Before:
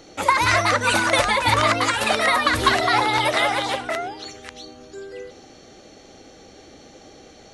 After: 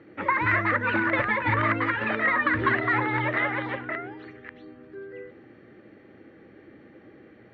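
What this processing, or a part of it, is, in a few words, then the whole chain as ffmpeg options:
bass cabinet: -af "highpass=89,equalizer=f=120:t=q:w=4:g=9,equalizer=f=210:t=q:w=4:g=5,equalizer=f=330:t=q:w=4:g=7,equalizer=f=730:t=q:w=4:g=-10,equalizer=f=1800:t=q:w=4:g=8,lowpass=f=2300:w=0.5412,lowpass=f=2300:w=1.3066,volume=0.501"

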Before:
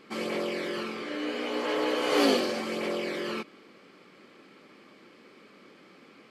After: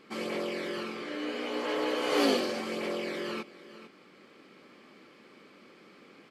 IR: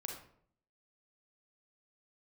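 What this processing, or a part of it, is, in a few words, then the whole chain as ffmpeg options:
ducked delay: -filter_complex "[0:a]asplit=3[s0][s1][s2];[s1]adelay=447,volume=0.708[s3];[s2]apad=whole_len=297977[s4];[s3][s4]sidechaincompress=threshold=0.00398:ratio=6:attack=16:release=917[s5];[s0][s5]amix=inputs=2:normalize=0,volume=0.75"

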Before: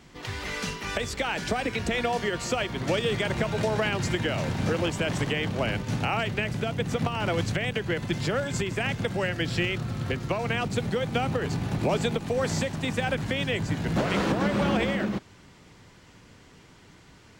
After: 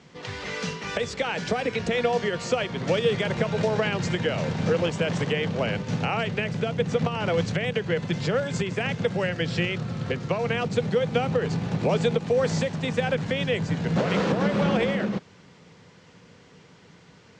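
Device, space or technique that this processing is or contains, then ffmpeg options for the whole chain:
car door speaker: -af "highpass=99,equalizer=f=170:t=q:w=4:g=6,equalizer=f=320:t=q:w=4:g=-4,equalizer=f=480:t=q:w=4:g=7,lowpass=f=7100:w=0.5412,lowpass=f=7100:w=1.3066"

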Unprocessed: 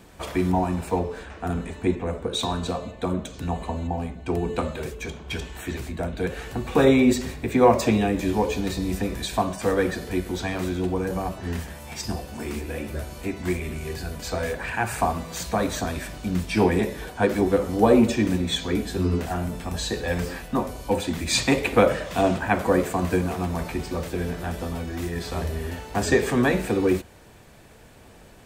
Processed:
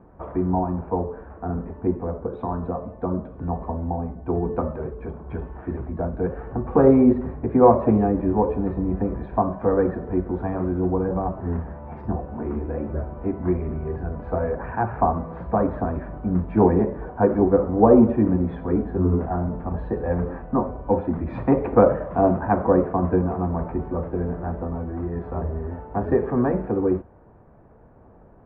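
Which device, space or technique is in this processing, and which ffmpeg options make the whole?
action camera in a waterproof case: -af "lowpass=f=1200:w=0.5412,lowpass=f=1200:w=1.3066,dynaudnorm=f=470:g=17:m=1.88" -ar 44100 -c:a aac -b:a 96k

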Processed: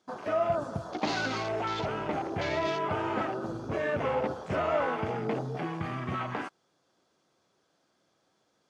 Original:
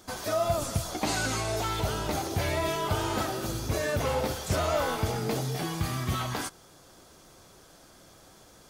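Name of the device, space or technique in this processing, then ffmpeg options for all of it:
over-cleaned archive recording: -af "highpass=160,lowpass=5500,afwtdn=0.0112"

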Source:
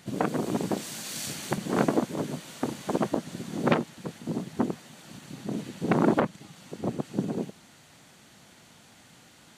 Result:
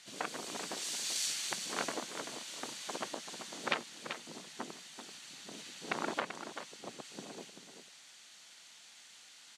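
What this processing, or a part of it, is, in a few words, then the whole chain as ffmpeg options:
piezo pickup straight into a mixer: -af "lowpass=5300,aderivative,aecho=1:1:387:0.355,volume=2.51"

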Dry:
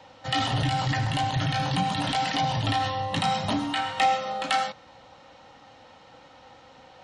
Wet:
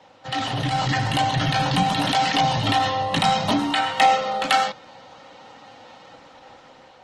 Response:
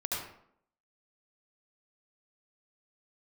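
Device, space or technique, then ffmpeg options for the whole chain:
video call: -af "highpass=130,dynaudnorm=f=270:g=5:m=2" -ar 48000 -c:a libopus -b:a 16k

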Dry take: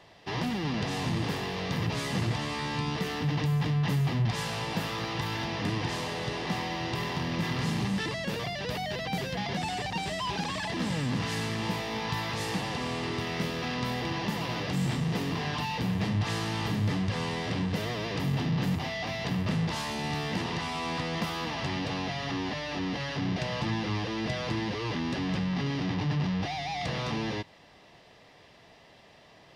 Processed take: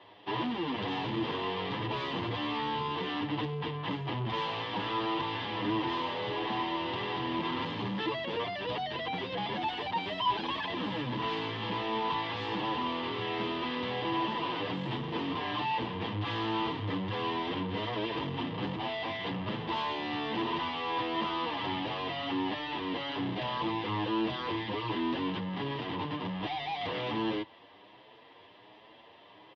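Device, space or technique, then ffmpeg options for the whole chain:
barber-pole flanger into a guitar amplifier: -filter_complex "[0:a]asplit=2[s0][s1];[s1]adelay=8.1,afreqshift=1.3[s2];[s0][s2]amix=inputs=2:normalize=1,asoftclip=type=tanh:threshold=0.0447,highpass=99,equalizer=f=160:t=q:w=4:g=-10,equalizer=f=320:t=q:w=4:g=8,equalizer=f=470:t=q:w=4:g=4,equalizer=f=980:t=q:w=4:g=10,equalizer=f=3200:t=q:w=4:g=8,lowpass=f=3800:w=0.5412,lowpass=f=3800:w=1.3066"

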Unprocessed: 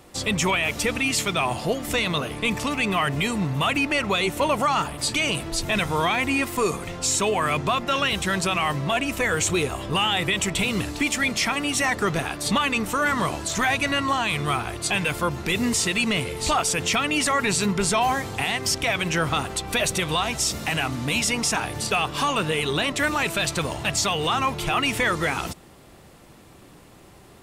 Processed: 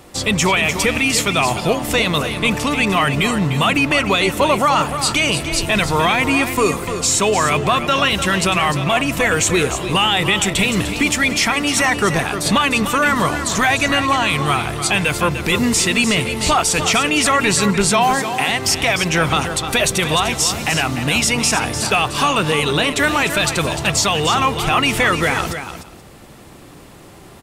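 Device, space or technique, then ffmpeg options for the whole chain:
ducked delay: -filter_complex "[0:a]asettb=1/sr,asplit=3[s0][s1][s2];[s0]atrim=end=17.914[s3];[s1]atrim=start=17.91:end=18.49,asetpts=PTS-STARTPTS,afade=t=in:d=0.004:c=qsin,afade=t=out:st=0.576:d=0.004:c=qsin,highpass=f=150:w=0.5412,highpass=f=150:w=1.3066[s4];[s2]atrim=start=18.486[s5];[s3][s4]acrossfade=d=0.004:c1=hsin:c2=qsin[s6];[s6][s5]acrossfade=d=0.004:c1=qsin:c2=hsin,aecho=1:1:300:0.335,asplit=3[s7][s8][s9];[s8]adelay=178,volume=0.531[s10];[s9]apad=whole_len=1230471[s11];[s10][s11]sidechaincompress=threshold=0.01:ratio=8:attack=16:release=599[s12];[s7][s12]amix=inputs=2:normalize=0,volume=2.11"

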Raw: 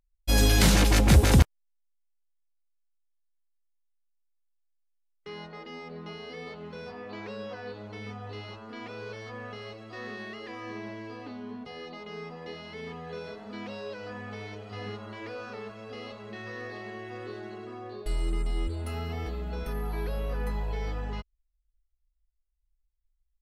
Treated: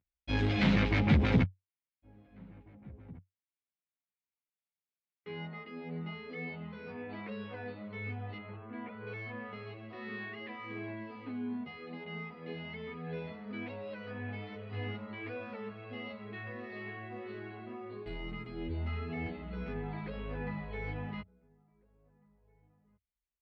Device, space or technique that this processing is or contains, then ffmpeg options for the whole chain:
barber-pole flanger into a guitar amplifier: -filter_complex "[0:a]asettb=1/sr,asplit=3[s0][s1][s2];[s0]atrim=end=8.374[s3];[s1]atrim=start=8.37:end=9.07,asetpts=PTS-STARTPTS,afade=t=in:d=0.004:c=qsin,afade=t=out:st=0.696:d=0.004:c=qsin,lowpass=2100[s4];[s2]atrim=start=9.066[s5];[s3][s4]acrossfade=d=0.004:c1=hsin:c2=qsin[s6];[s6][s5]acrossfade=d=0.004:c1=qsin:c2=hsin,asplit=2[s7][s8];[s8]adelay=1749,volume=0.0398,highshelf=f=4000:g=-39.4[s9];[s7][s9]amix=inputs=2:normalize=0,asplit=2[s10][s11];[s11]adelay=10.7,afreqshift=-1.8[s12];[s10][s12]amix=inputs=2:normalize=1,asoftclip=type=tanh:threshold=0.112,highpass=83,equalizer=f=94:t=q:w=4:g=10,equalizer=f=170:t=q:w=4:g=8,equalizer=f=250:t=q:w=4:g=6,equalizer=f=2200:t=q:w=4:g=7,lowpass=f=3600:w=0.5412,lowpass=f=3600:w=1.3066,volume=0.794"

